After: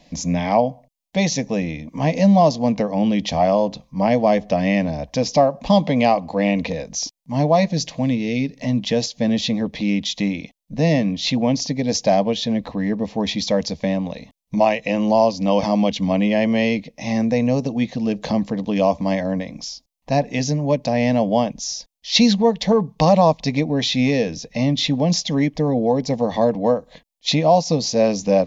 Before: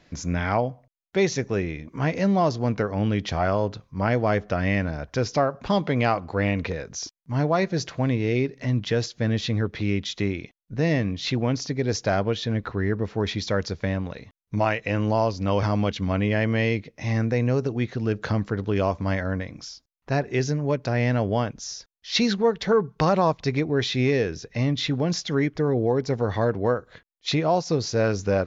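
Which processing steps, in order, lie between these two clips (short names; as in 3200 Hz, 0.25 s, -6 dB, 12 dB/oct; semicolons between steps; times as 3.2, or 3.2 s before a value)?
7.68–8.57 dynamic EQ 790 Hz, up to -7 dB, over -40 dBFS, Q 0.76; fixed phaser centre 380 Hz, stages 6; gain +8.5 dB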